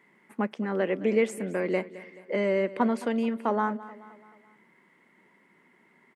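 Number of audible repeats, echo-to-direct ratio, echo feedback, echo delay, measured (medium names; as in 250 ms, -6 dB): 3, -16.0 dB, 50%, 215 ms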